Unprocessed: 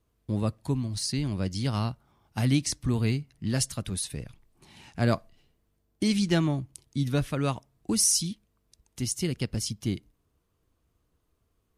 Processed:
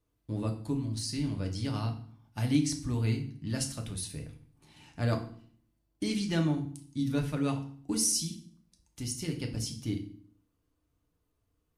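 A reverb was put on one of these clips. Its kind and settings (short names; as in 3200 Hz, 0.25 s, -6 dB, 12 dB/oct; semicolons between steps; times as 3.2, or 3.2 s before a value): FDN reverb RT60 0.51 s, low-frequency decay 1.45×, high-frequency decay 0.9×, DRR 2.5 dB; gain -7 dB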